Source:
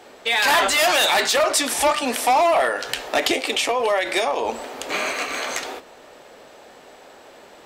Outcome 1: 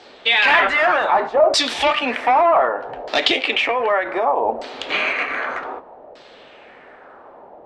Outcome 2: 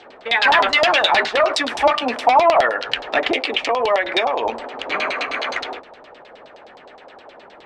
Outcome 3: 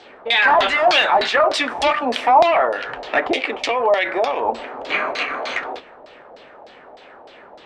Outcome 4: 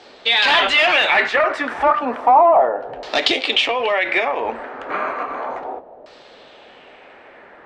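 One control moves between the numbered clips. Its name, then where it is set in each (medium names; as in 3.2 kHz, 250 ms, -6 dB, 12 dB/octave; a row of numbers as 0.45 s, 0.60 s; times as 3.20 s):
LFO low-pass, rate: 0.65 Hz, 9.6 Hz, 3.3 Hz, 0.33 Hz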